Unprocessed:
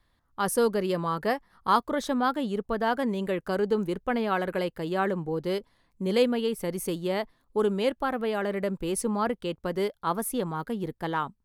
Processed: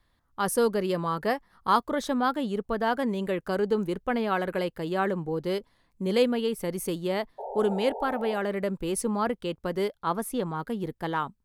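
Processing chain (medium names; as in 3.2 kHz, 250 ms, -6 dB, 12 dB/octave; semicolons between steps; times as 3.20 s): 7.38–8.38 s: painted sound noise 390–940 Hz -36 dBFS; 9.94–10.65 s: treble shelf 9.1 kHz -8 dB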